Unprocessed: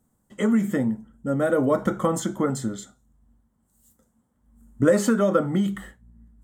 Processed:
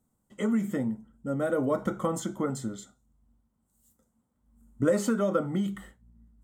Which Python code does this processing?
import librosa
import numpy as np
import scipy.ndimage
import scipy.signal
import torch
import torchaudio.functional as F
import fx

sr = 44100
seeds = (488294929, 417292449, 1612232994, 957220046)

y = fx.notch(x, sr, hz=1700.0, q=10.0)
y = y * 10.0 ** (-6.0 / 20.0)